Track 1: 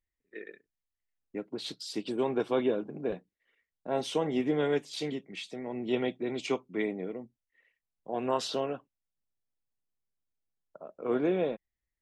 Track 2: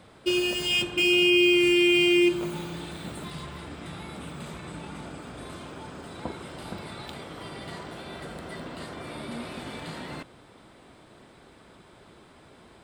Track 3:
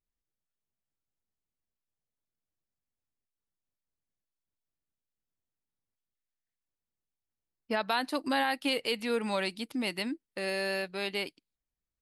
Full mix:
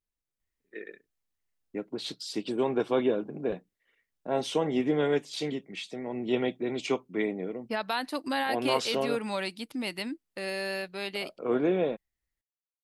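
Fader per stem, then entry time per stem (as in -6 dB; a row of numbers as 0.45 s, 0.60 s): +2.0 dB, mute, -1.0 dB; 0.40 s, mute, 0.00 s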